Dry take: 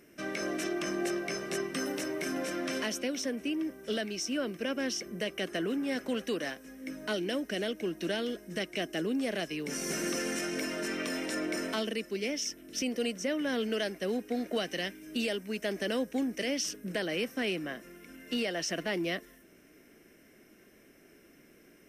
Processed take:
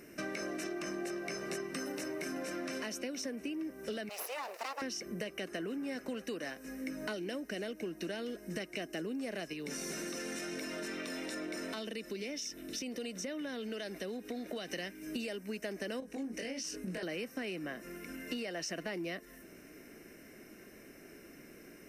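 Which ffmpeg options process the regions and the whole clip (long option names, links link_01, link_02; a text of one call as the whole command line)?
ffmpeg -i in.wav -filter_complex "[0:a]asettb=1/sr,asplit=3[link_01][link_02][link_03];[link_01]atrim=end=4.094[link_04];[link_02]atrim=start=4.09:end=4.82,asetpts=PTS-STARTPTS,afade=type=in:duration=0.004:curve=qsin,afade=type=out:start_time=0.726:duration=0.004:curve=qsin,aeval=exprs='abs(val(0))':channel_layout=same,highpass=frequency=430:width=0.5412,highpass=frequency=430:width=1.3066[link_05];[link_03]atrim=start=4.816[link_06];[link_04][link_05]acrossfade=duration=0.004:curve1=hsin:curve2=qsin[link_07];[link_07][link_06]acrossfade=duration=0.004:curve1=qsin:curve2=hsin,asettb=1/sr,asplit=3[link_08][link_09][link_10];[link_08]atrim=end=9.534[link_11];[link_09]atrim=start=9.53:end=14.7,asetpts=PTS-STARTPTS,afade=type=in:duration=0.004:curve=qsin,afade=type=out:start_time=5.166:duration=0.004:curve=qsin,equalizer=frequency=3600:width_type=o:width=0.28:gain=10,acompressor=threshold=-41dB:ratio=2:attack=3.2:release=140:knee=1:detection=peak[link_12];[link_10]atrim=start=14.696[link_13];[link_11][link_12]acrossfade=duration=0.004:curve1=hsin:curve2=qsin[link_14];[link_14][link_13]acrossfade=duration=0.004:curve1=qsin:curve2=hsin,asettb=1/sr,asplit=3[link_15][link_16][link_17];[link_15]atrim=end=16.004[link_18];[link_16]atrim=start=16:end=17.03,asetpts=PTS-STARTPTS,afade=type=in:duration=0.004:curve=qsin,afade=type=out:start_time=1.026:duration=0.004:curve=qsin,lowpass=frequency=12000:width=0.5412,lowpass=frequency=12000:width=1.3066,acompressor=threshold=-38dB:ratio=4:attack=3.2:release=140:knee=1:detection=peak,asplit=2[link_19][link_20];[link_20]adelay=22,volume=-2.5dB[link_21];[link_19][link_21]amix=inputs=2:normalize=0,atrim=end_sample=45423[link_22];[link_17]atrim=start=17.026[link_23];[link_18][link_22]acrossfade=duration=0.004:curve1=hsin:curve2=qsin[link_24];[link_24][link_23]acrossfade=duration=0.004:curve1=qsin:curve2=hsin,acompressor=threshold=-42dB:ratio=6,bandreject=frequency=3300:width=5.3,volume=5dB" out.wav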